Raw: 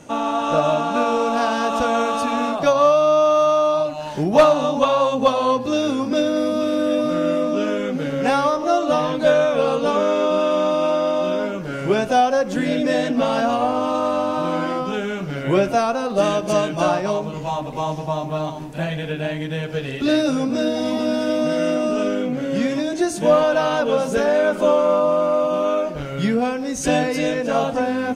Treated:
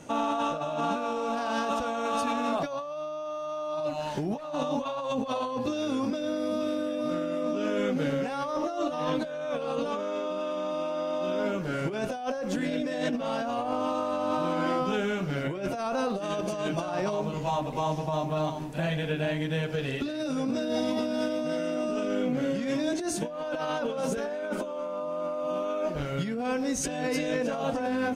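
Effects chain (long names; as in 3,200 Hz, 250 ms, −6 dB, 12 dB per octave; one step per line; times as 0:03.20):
compressor whose output falls as the input rises −23 dBFS, ratio −1
level −7 dB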